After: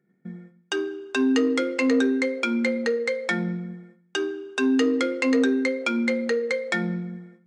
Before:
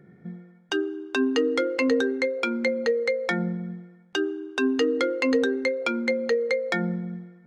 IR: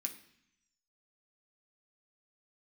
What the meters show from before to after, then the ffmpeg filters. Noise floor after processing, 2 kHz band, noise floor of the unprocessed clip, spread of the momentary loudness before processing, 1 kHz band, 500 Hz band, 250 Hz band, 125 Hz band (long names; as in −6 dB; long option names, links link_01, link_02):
−63 dBFS, +1.0 dB, −54 dBFS, 11 LU, 0.0 dB, −1.0 dB, +3.5 dB, 0.0 dB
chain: -filter_complex "[0:a]agate=range=-18dB:threshold=-48dB:ratio=16:detection=peak,asoftclip=type=tanh:threshold=-15dB,asplit=2[link_01][link_02];[1:a]atrim=start_sample=2205,afade=type=out:start_time=0.43:duration=0.01,atrim=end_sample=19404[link_03];[link_02][link_03]afir=irnorm=-1:irlink=0,volume=4dB[link_04];[link_01][link_04]amix=inputs=2:normalize=0,aresample=22050,aresample=44100,volume=-3.5dB"